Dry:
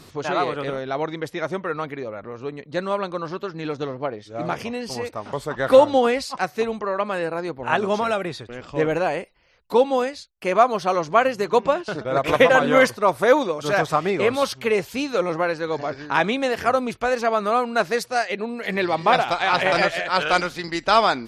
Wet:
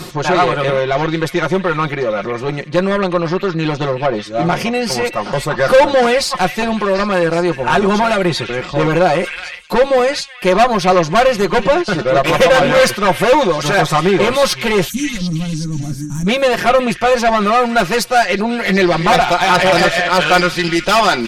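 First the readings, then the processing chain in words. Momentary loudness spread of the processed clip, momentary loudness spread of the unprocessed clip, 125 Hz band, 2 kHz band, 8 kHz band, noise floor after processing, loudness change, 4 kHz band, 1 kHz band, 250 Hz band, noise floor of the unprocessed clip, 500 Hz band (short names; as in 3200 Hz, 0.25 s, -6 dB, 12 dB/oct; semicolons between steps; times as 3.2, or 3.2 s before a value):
8 LU, 12 LU, +13.5 dB, +7.5 dB, +12.5 dB, -29 dBFS, +7.5 dB, +10.5 dB, +7.0 dB, +10.0 dB, -47 dBFS, +7.0 dB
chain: tube stage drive 19 dB, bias 0.45; comb 5.6 ms, depth 81%; in parallel at -1.5 dB: limiter -20.5 dBFS, peak gain reduction 9 dB; on the sum: spectral gain 14.88–16.27, 310–5500 Hz -28 dB; delay with a stepping band-pass 0.371 s, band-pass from 2500 Hz, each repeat 0.7 oct, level -8 dB; reverse; upward compressor, threshold -21 dBFS; reverse; gain +7 dB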